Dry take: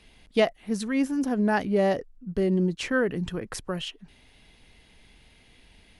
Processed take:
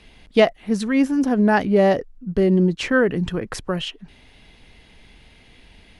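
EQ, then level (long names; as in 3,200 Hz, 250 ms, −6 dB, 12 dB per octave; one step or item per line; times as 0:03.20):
high-shelf EQ 7,600 Hz −9.5 dB
+7.0 dB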